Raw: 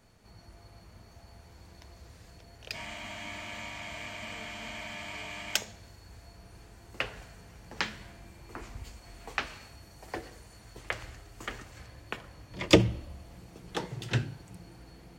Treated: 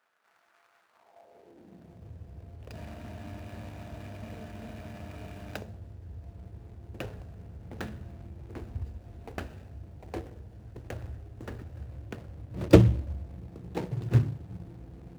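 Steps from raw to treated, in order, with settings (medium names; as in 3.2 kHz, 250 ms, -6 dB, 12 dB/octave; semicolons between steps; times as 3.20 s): median filter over 41 samples; high-pass sweep 1.3 kHz -> 76 Hz, 0.88–2.22 s; trim +4 dB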